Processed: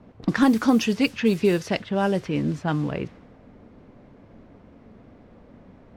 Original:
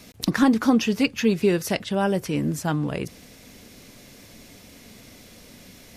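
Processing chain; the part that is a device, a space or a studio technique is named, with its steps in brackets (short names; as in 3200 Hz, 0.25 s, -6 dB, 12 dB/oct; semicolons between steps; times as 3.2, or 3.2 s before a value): cassette deck with a dynamic noise filter (white noise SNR 22 dB; low-pass opened by the level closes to 750 Hz, open at -15.5 dBFS)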